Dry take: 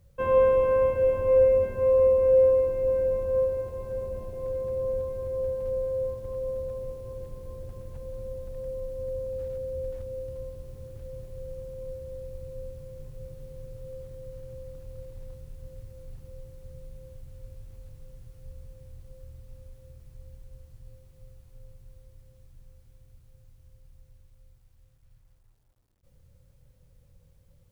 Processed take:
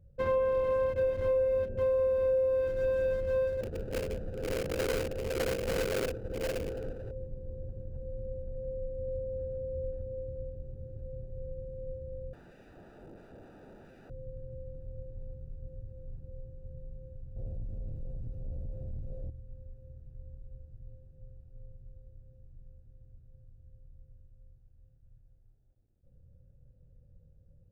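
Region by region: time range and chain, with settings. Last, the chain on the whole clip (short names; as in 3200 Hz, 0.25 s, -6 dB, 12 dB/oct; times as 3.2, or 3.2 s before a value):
3.61–7.11 bell 180 Hz +6 dB 0.6 oct + sample-rate reducer 1000 Hz, jitter 20%
12.33–14.1 low shelf 500 Hz +4.5 dB + wrapped overs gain 40.5 dB
17.36–19.3 bell 1600 Hz -7 dB 0.43 oct + sample leveller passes 3
whole clip: Wiener smoothing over 41 samples; compressor, threshold -26 dBFS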